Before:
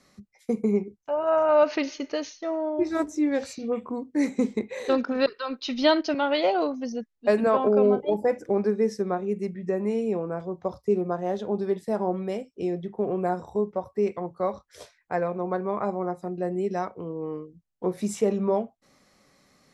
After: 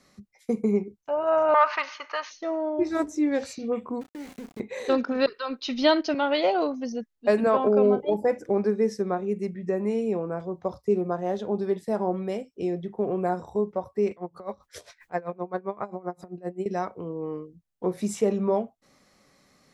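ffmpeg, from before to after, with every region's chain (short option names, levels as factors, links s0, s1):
-filter_complex "[0:a]asettb=1/sr,asplit=3[s0][s1][s2];[s0]atrim=end=1.544[s3];[s1]atrim=start=1.54:end=2.31,asetpts=PTS-STARTPTS,afade=t=in:d=0.004:c=qsin,afade=t=out:st=0.766:d=0.004:c=qsin,highshelf=f=5100:g=-9.5,asplit=2[s4][s5];[s5]highpass=f=720:p=1,volume=3.55,asoftclip=type=tanh:threshold=0.316[s6];[s4][s6]amix=inputs=2:normalize=0,lowpass=f=2400:p=1,volume=0.501,highpass=f=1100:t=q:w=4[s7];[s2]atrim=start=2.306[s8];[s3][s7]acrossfade=d=0.004:c1=hsin:c2=qsin[s9];[s9][s8]acrossfade=d=0.004:c1=qsin:c2=hsin,asettb=1/sr,asplit=3[s10][s11][s12];[s10]atrim=end=4.014[s13];[s11]atrim=start=4.01:end=4.6,asetpts=PTS-STARTPTS,afade=t=in:d=0.004:c=qsin,afade=t=out:st=0.586:d=0.004:c=qsin,acompressor=threshold=0.0141:ratio=6:attack=3.2:release=140:knee=1:detection=peak,aeval=exprs='val(0)*gte(abs(val(0)),0.0075)':c=same,asplit=2[s14][s15];[s15]adelay=31,volume=0.224[s16];[s14][s16]amix=inputs=2:normalize=0,atrim=end_sample=26019[s17];[s12]atrim=start=4.596[s18];[s13][s17]acrossfade=d=0.004:c1=hsin:c2=qsin[s19];[s19][s18]acrossfade=d=0.004:c1=qsin:c2=hsin,asettb=1/sr,asplit=3[s20][s21][s22];[s20]atrim=end=14.114[s23];[s21]atrim=start=14.11:end=16.66,asetpts=PTS-STARTPTS,afade=t=in:d=0.004:c=qsin,afade=t=out:st=2.546:d=0.004:c=qsin,acompressor=mode=upward:threshold=0.0398:ratio=2.5:attack=3.2:release=140:knee=2.83:detection=peak,aeval=exprs='val(0)*pow(10,-22*(0.5-0.5*cos(2*PI*7.6*n/s))/20)':c=same[s24];[s22]atrim=start=16.656[s25];[s23][s24]acrossfade=d=0.004:c1=hsin:c2=qsin[s26];[s26][s25]acrossfade=d=0.004:c1=qsin:c2=hsin"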